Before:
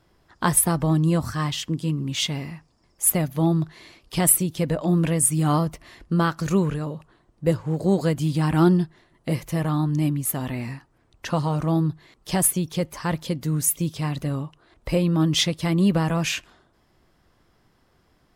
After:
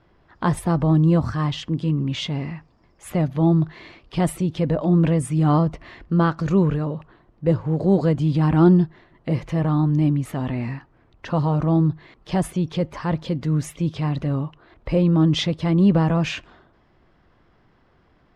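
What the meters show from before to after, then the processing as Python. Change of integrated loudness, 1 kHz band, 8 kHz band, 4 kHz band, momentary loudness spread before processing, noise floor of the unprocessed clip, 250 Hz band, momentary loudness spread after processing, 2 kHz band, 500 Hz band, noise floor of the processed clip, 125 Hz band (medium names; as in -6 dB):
+1.5 dB, +1.0 dB, under -15 dB, -3.5 dB, 12 LU, -64 dBFS, +3.5 dB, 11 LU, -2.0 dB, +2.5 dB, -59 dBFS, +3.5 dB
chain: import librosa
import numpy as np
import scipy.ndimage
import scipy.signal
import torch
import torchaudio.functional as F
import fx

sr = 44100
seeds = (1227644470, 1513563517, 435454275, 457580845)

y = scipy.signal.sosfilt(scipy.signal.butter(2, 2900.0, 'lowpass', fs=sr, output='sos'), x)
y = fx.dynamic_eq(y, sr, hz=2100.0, q=0.77, threshold_db=-41.0, ratio=4.0, max_db=-6)
y = fx.transient(y, sr, attack_db=-3, sustain_db=2)
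y = y * 10.0 ** (4.0 / 20.0)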